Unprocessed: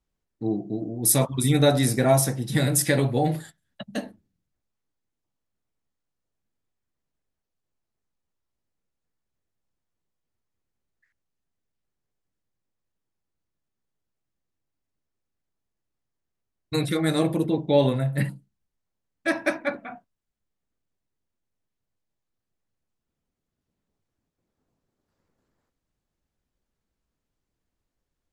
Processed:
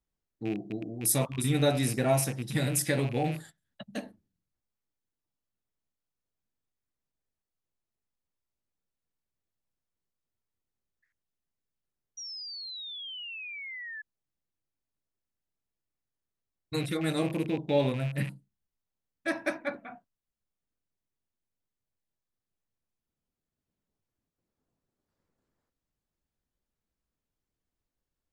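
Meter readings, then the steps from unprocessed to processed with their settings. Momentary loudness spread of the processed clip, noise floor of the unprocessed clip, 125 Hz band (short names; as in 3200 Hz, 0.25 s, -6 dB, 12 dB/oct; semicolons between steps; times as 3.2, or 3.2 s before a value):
14 LU, -83 dBFS, -6.5 dB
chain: rattling part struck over -28 dBFS, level -26 dBFS; painted sound fall, 12.17–14.02, 1700–5800 Hz -34 dBFS; gain -6.5 dB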